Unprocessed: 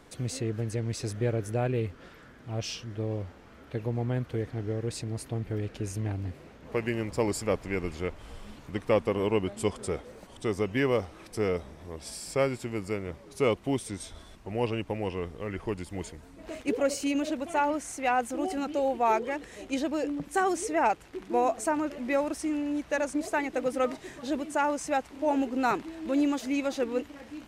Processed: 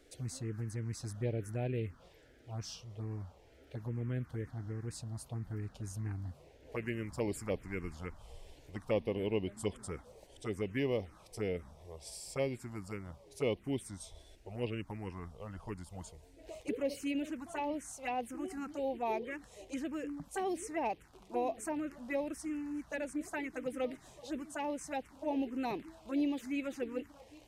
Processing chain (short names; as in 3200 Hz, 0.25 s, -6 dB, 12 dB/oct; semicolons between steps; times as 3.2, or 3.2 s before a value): envelope phaser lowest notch 160 Hz, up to 1400 Hz, full sweep at -23 dBFS; gain -6 dB